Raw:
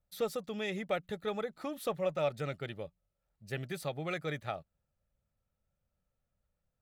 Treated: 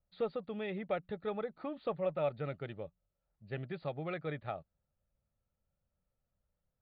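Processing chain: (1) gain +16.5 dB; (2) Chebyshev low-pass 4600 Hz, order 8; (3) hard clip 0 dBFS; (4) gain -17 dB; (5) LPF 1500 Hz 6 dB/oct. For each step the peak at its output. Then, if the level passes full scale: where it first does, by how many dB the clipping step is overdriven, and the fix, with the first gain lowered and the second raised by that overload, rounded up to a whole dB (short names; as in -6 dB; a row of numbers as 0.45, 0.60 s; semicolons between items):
-4.0, -4.5, -4.5, -21.5, -23.0 dBFS; no overload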